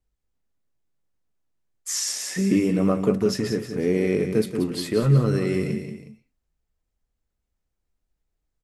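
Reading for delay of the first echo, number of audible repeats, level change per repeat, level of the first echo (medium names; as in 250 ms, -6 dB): 182 ms, 2, -8.0 dB, -8.5 dB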